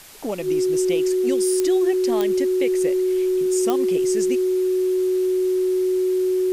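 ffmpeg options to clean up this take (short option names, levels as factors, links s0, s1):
-af "adeclick=t=4,bandreject=f=370:w=30,afwtdn=0.0071"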